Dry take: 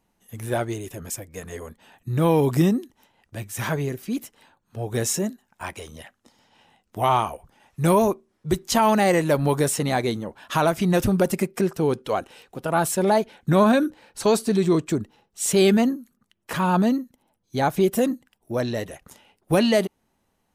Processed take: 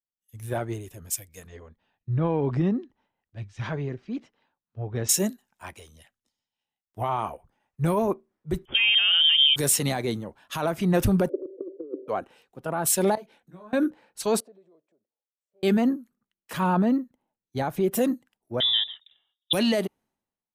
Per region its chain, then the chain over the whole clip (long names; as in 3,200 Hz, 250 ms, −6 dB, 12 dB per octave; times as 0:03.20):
0:01.47–0:05.09: low-pass filter 5,100 Hz 24 dB per octave + downward compressor 2 to 1, threshold −24 dBFS
0:08.65–0:09.56: parametric band 290 Hz +12 dB 0.22 octaves + voice inversion scrambler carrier 3,400 Hz
0:11.29–0:12.08: linear delta modulator 32 kbit/s, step −34 dBFS + Chebyshev band-pass filter 280–580 Hz, order 5 + compressor whose output falls as the input rises −27 dBFS, ratio −0.5
0:13.15–0:13.73: downward expander −57 dBFS + downward compressor 2.5 to 1, threshold −38 dBFS + micro pitch shift up and down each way 13 cents
0:14.40–0:15.63: downward compressor 5 to 1, threshold −31 dBFS + resonant band-pass 580 Hz, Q 4.3
0:18.60–0:19.53: parametric band 1,200 Hz −12.5 dB 0.5 octaves + voice inversion scrambler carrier 3,700 Hz
whole clip: dynamic equaliser 6,400 Hz, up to −4 dB, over −45 dBFS, Q 0.73; brickwall limiter −16.5 dBFS; multiband upward and downward expander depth 100%; level −1 dB